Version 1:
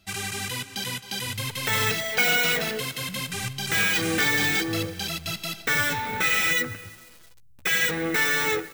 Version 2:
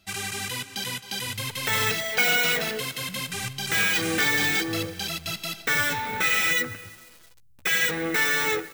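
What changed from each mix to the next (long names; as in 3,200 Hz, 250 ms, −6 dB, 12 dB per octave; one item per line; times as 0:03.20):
master: add low-shelf EQ 230 Hz −3.5 dB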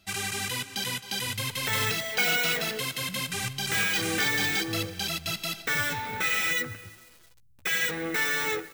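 second sound −4.0 dB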